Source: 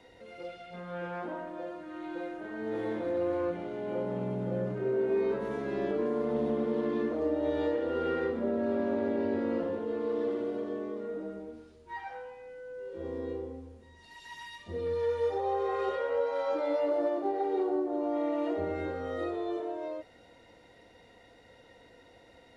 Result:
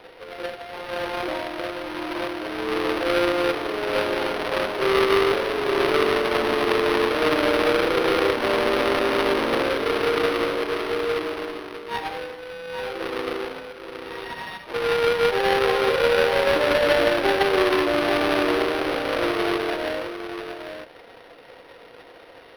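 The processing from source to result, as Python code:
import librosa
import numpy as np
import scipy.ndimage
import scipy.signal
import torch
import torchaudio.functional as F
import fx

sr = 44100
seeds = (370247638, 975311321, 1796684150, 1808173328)

y = fx.halfwave_hold(x, sr)
y = scipy.signal.sosfilt(scipy.signal.cheby2(4, 40, 160.0, 'highpass', fs=sr, output='sos'), y)
y = fx.high_shelf(y, sr, hz=3900.0, db=7.0)
y = y + 10.0 ** (-8.0 / 20.0) * np.pad(y, (int(830 * sr / 1000.0), 0))[:len(y)]
y = np.interp(np.arange(len(y)), np.arange(len(y))[::6], y[::6])
y = y * 10.0 ** (6.5 / 20.0)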